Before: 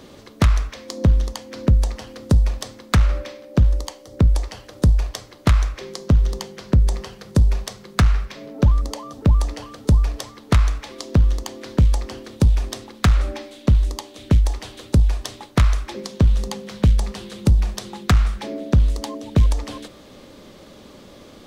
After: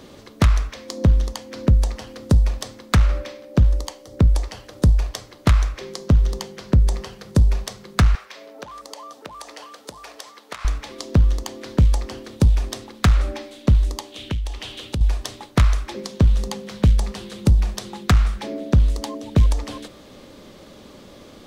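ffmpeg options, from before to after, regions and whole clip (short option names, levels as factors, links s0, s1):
-filter_complex "[0:a]asettb=1/sr,asplit=3[s0][s1][s2];[s0]atrim=end=8.154[s3];[s1]atrim=start=8.15:end=10.65,asetpts=PTS-STARTPTS,afade=t=in:d=0.004:c=qsin,afade=t=out:st=2.496:d=0.004:c=qsin,highpass=560,acompressor=threshold=0.02:ratio=2:attack=3.2:release=140:knee=1:detection=peak[s4];[s2]atrim=start=10.646[s5];[s3][s4]acrossfade=d=0.004:c1=hsin:c2=qsin[s6];[s6][s5]acrossfade=d=0.004:c1=qsin:c2=hsin,asettb=1/sr,asplit=3[s7][s8][s9];[s7]atrim=end=14.124[s10];[s8]atrim=start=14.12:end=15.01,asetpts=PTS-STARTPTS,afade=t=in:d=0.004:c=qsin,afade=t=out:st=0.886:d=0.004:c=qsin,equalizer=f=3000:w=1.8:g=11,acompressor=threshold=0.0316:ratio=2:attack=3.2:release=140:knee=1:detection=peak[s11];[s9]atrim=start=15.006[s12];[s10][s11]acrossfade=d=0.004:c1=hsin:c2=qsin[s13];[s13][s12]acrossfade=d=0.004:c1=qsin:c2=hsin"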